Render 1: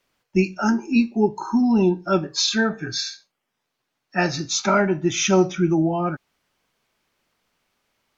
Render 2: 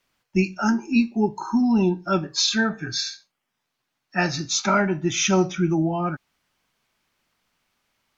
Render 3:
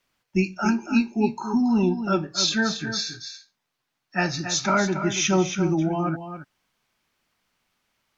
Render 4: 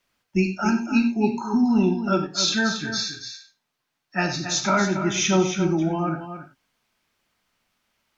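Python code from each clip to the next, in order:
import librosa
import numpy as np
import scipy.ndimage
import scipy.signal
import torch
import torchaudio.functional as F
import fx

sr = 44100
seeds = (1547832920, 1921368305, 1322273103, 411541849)

y1 = fx.peak_eq(x, sr, hz=460.0, db=-5.0, octaves=1.1)
y2 = y1 + 10.0 ** (-9.5 / 20.0) * np.pad(y1, (int(277 * sr / 1000.0), 0))[:len(y1)]
y2 = F.gain(torch.from_numpy(y2), -1.5).numpy()
y3 = fx.rev_gated(y2, sr, seeds[0], gate_ms=120, shape='flat', drr_db=6.5)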